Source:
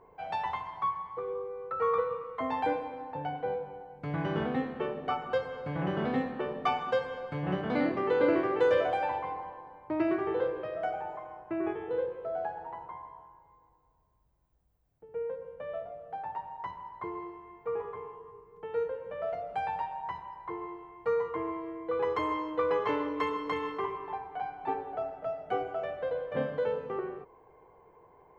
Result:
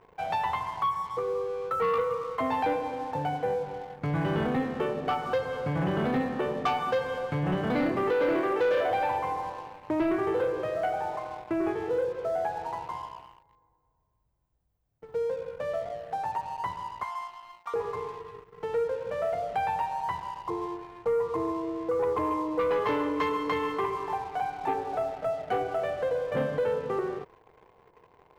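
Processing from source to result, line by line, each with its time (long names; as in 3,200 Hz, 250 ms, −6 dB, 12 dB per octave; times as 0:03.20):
0:08.10–0:08.91: high-pass filter 270 Hz
0:17.03–0:17.74: Butterworth high-pass 690 Hz 72 dB per octave
0:20.42–0:22.60: Savitzky-Golay smoothing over 65 samples
whole clip: parametric band 110 Hz +4 dB 0.77 octaves; leveller curve on the samples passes 2; downward compressor 1.5 to 1, threshold −30 dBFS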